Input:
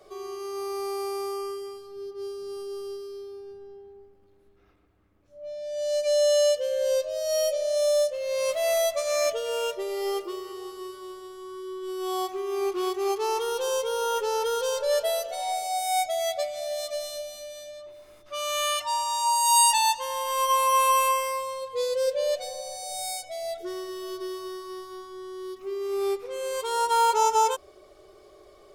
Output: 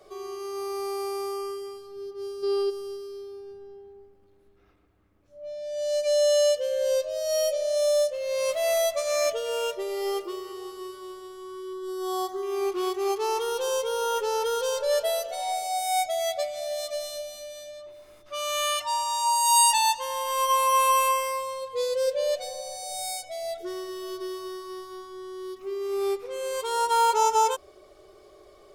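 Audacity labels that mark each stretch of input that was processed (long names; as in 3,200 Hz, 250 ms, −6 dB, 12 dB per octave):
2.430000	2.700000	gain on a spectral selection 300–5,400 Hz +11 dB
11.730000	12.430000	Butterworth band-reject 2,500 Hz, Q 1.9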